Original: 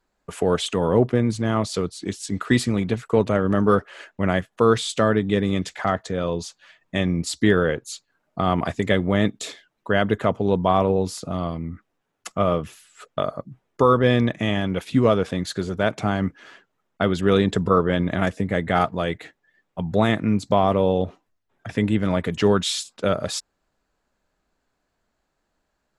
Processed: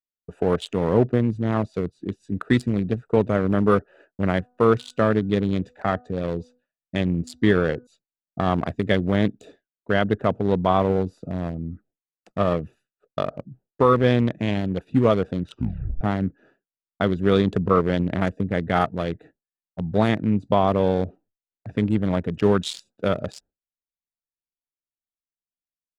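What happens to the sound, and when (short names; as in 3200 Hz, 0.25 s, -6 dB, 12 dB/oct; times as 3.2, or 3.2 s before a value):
4.29–7.87 de-hum 247.1 Hz, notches 6
15.41 tape stop 0.60 s
whole clip: Wiener smoothing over 41 samples; expander -47 dBFS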